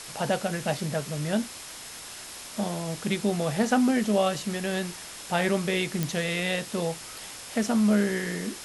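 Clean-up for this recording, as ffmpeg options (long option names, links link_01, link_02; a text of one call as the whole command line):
ffmpeg -i in.wav -af "adeclick=threshold=4,bandreject=frequency=5200:width=30,afwtdn=0.011" out.wav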